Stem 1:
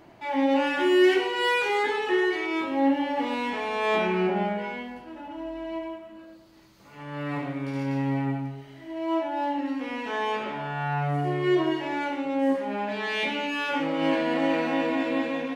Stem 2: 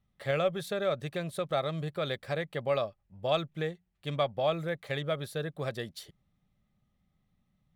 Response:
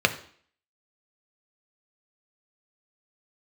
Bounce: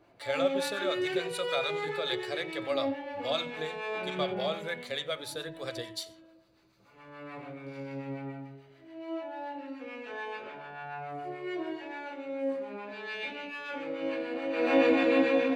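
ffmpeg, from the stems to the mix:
-filter_complex "[0:a]volume=-3dB,afade=type=in:start_time=14.52:duration=0.22:silence=0.251189,asplit=2[link_01][link_02];[link_02]volume=-9dB[link_03];[1:a]equalizer=frequency=6400:width_type=o:width=2.9:gain=15,volume=-8dB,asplit=3[link_04][link_05][link_06];[link_05]volume=-15dB[link_07];[link_06]volume=-15dB[link_08];[2:a]atrim=start_sample=2205[link_09];[link_03][link_07]amix=inputs=2:normalize=0[link_10];[link_10][link_09]afir=irnorm=-1:irlink=0[link_11];[link_08]aecho=0:1:91:1[link_12];[link_01][link_04][link_11][link_12]amix=inputs=4:normalize=0,equalizer=frequency=220:width=4.7:gain=-7.5,acrossover=split=750[link_13][link_14];[link_13]aeval=exprs='val(0)*(1-0.5/2+0.5/2*cos(2*PI*6.9*n/s))':channel_layout=same[link_15];[link_14]aeval=exprs='val(0)*(1-0.5/2-0.5/2*cos(2*PI*6.9*n/s))':channel_layout=same[link_16];[link_15][link_16]amix=inputs=2:normalize=0"

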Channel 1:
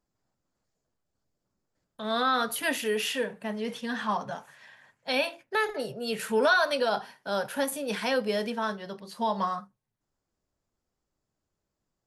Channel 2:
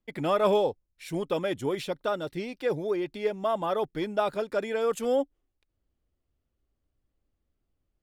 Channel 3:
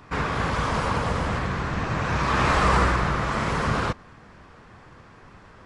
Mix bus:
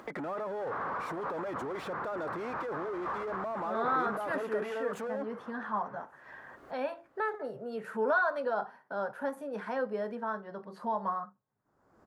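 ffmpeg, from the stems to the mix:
ffmpeg -i stem1.wav -i stem2.wav -i stem3.wav -filter_complex "[0:a]highshelf=frequency=3900:gain=-11,adelay=1650,volume=-5dB[link_01];[1:a]volume=1.5dB[link_02];[2:a]highshelf=frequency=2700:gain=-12,adelay=400,volume=-16.5dB[link_03];[link_02][link_03]amix=inputs=2:normalize=0,asplit=2[link_04][link_05];[link_05]highpass=frequency=720:poles=1,volume=25dB,asoftclip=type=tanh:threshold=-22dB[link_06];[link_04][link_06]amix=inputs=2:normalize=0,lowpass=frequency=2600:poles=1,volume=-6dB,alimiter=level_in=7dB:limit=-24dB:level=0:latency=1:release=44,volume=-7dB,volume=0dB[link_07];[link_01][link_07]amix=inputs=2:normalize=0,highpass=frequency=210:poles=1,highshelf=frequency=2000:width_type=q:width=1.5:gain=-11,acompressor=mode=upward:threshold=-35dB:ratio=2.5" out.wav

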